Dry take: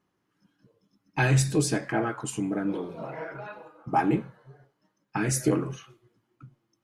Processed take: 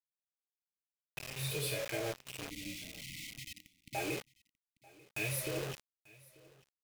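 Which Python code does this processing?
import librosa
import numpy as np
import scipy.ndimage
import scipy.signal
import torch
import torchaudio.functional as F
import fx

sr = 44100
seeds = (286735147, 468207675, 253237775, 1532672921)

y = fx.env_lowpass(x, sr, base_hz=630.0, full_db=-23.0)
y = fx.high_shelf(y, sr, hz=2400.0, db=11.0)
y = fx.hpss(y, sr, part='percussive', gain_db=-18)
y = fx.curve_eq(y, sr, hz=(100.0, 150.0, 240.0, 340.0, 580.0, 1100.0, 2500.0, 3900.0, 6600.0, 14000.0), db=(0, -8, -26, -7, 10, -26, 9, 3, -18, 13))
y = fx.over_compress(y, sr, threshold_db=-33.0, ratio=-1.0)
y = fx.quant_dither(y, sr, seeds[0], bits=6, dither='none')
y = fx.vibrato(y, sr, rate_hz=0.39, depth_cents=26.0)
y = fx.brickwall_bandstop(y, sr, low_hz=320.0, high_hz=1900.0, at=(2.5, 3.95))
y = y + 10.0 ** (-23.5 / 20.0) * np.pad(y, (int(890 * sr / 1000.0), 0))[:len(y)]
y = y * 10.0 ** (-4.5 / 20.0)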